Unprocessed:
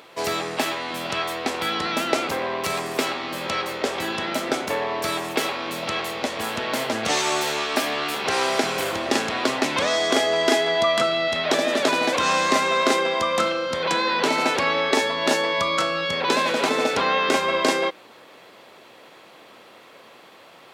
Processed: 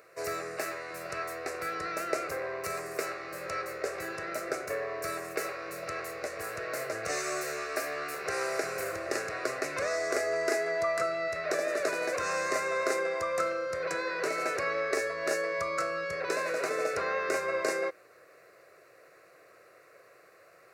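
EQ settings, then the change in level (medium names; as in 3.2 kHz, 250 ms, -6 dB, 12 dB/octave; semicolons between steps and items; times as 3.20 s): static phaser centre 890 Hz, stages 6; -6.5 dB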